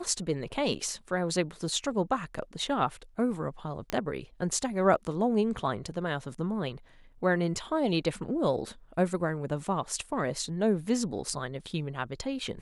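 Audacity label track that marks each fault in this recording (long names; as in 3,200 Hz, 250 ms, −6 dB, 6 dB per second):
3.900000	3.900000	click −15 dBFS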